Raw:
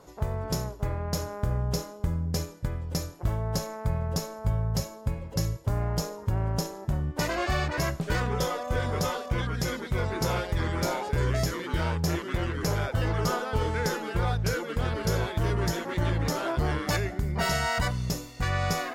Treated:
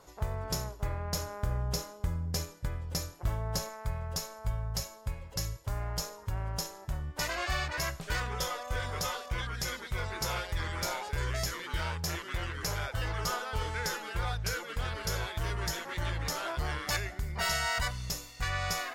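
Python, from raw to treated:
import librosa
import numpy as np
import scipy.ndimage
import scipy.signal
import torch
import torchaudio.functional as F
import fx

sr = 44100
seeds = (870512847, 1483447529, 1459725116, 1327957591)

y = fx.peak_eq(x, sr, hz=240.0, db=fx.steps((0.0, -8.5), (3.69, -14.5)), octaves=3.0)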